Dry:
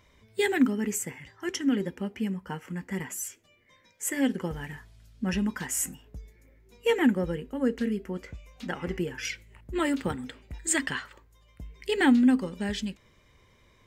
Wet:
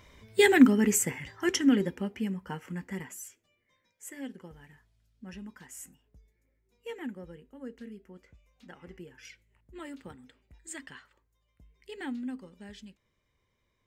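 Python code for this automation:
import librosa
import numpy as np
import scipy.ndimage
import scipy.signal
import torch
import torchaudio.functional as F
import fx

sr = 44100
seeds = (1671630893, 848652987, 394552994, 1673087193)

y = fx.gain(x, sr, db=fx.line((1.44, 5.0), (2.2, -2.0), (2.8, -2.0), (3.23, -9.0), (4.52, -16.0)))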